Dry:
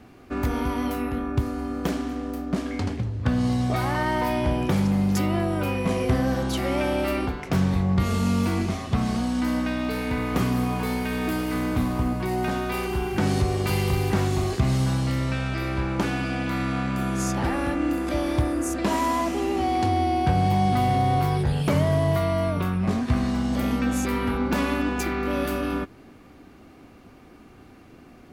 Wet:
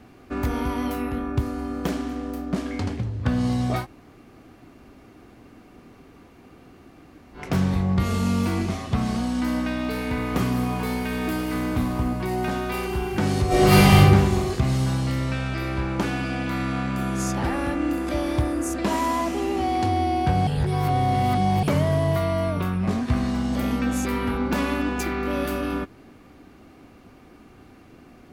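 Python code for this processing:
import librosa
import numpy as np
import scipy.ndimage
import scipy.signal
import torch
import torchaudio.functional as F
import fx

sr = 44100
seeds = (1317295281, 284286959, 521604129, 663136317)

y = fx.reverb_throw(x, sr, start_s=13.47, length_s=0.5, rt60_s=1.4, drr_db=-12.0)
y = fx.edit(y, sr, fx.room_tone_fill(start_s=3.82, length_s=3.56, crossfade_s=0.1),
    fx.reverse_span(start_s=20.47, length_s=1.16), tone=tone)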